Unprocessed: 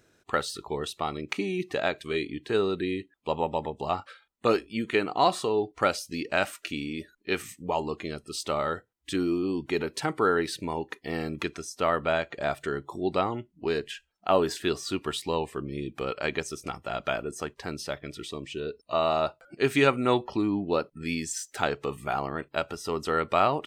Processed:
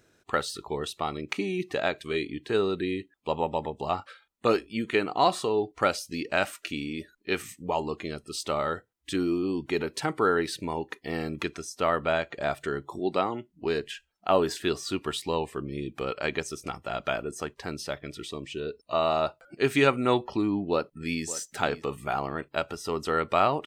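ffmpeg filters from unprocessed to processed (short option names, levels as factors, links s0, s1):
-filter_complex "[0:a]asettb=1/sr,asplit=3[s0][s1][s2];[s0]atrim=end=12.994[s3];[s1]atrim=start=12.99:end=13.5,asetpts=PTS-STARTPTS,afade=t=in:d=0.004:c=qsin,afade=t=out:st=0.506:d=0.004:c=qsin,highpass=160[s4];[s2]atrim=start=13.496[s5];[s3][s4]acrossfade=d=0.004:c1=hsin:c2=qsin[s6];[s6][s5]acrossfade=d=0.004:c1=qsin:c2=hsin,asplit=2[s7][s8];[s8]afade=t=in:st=20.7:d=0.01,afade=t=out:st=21.25:d=0.01,aecho=0:1:570|1140:0.16788|0.0251821[s9];[s7][s9]amix=inputs=2:normalize=0"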